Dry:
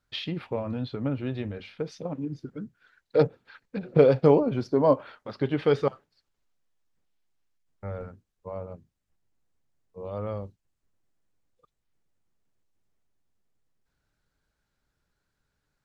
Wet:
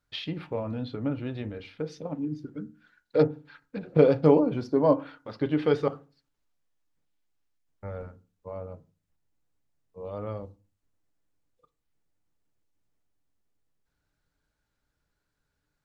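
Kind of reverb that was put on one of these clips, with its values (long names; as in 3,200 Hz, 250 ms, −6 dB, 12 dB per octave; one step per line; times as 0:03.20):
feedback delay network reverb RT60 0.33 s, low-frequency decay 1.35×, high-frequency decay 0.25×, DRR 11 dB
level −2 dB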